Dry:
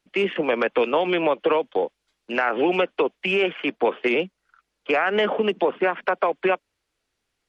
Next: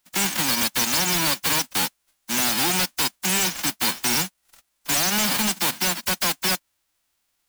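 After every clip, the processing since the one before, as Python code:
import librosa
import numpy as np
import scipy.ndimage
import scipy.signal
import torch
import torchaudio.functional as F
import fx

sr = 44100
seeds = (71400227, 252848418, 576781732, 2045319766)

y = fx.envelope_flatten(x, sr, power=0.1)
y = np.clip(10.0 ** (24.0 / 20.0) * y, -1.0, 1.0) / 10.0 ** (24.0 / 20.0)
y = fx.peak_eq(y, sr, hz=430.0, db=-9.0, octaves=0.39)
y = y * librosa.db_to_amplitude(5.0)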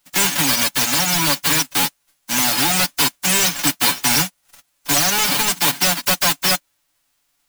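y = x + 0.8 * np.pad(x, (int(7.0 * sr / 1000.0), 0))[:len(x)]
y = fx.rider(y, sr, range_db=10, speed_s=0.5)
y = y * librosa.db_to_amplitude(3.5)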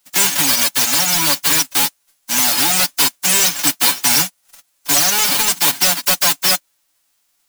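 y = fx.bass_treble(x, sr, bass_db=-5, treble_db=4)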